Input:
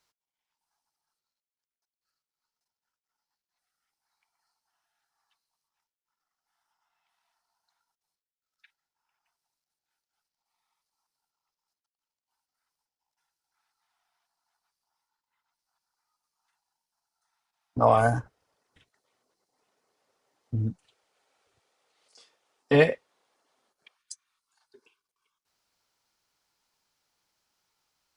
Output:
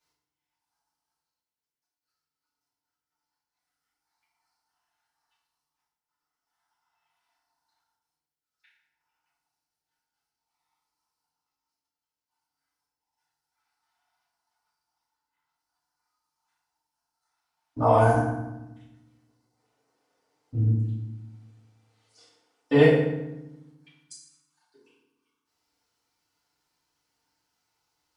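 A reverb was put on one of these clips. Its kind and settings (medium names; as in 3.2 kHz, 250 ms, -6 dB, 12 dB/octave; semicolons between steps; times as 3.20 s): FDN reverb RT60 0.96 s, low-frequency decay 1.6×, high-frequency decay 0.7×, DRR -9.5 dB; trim -9.5 dB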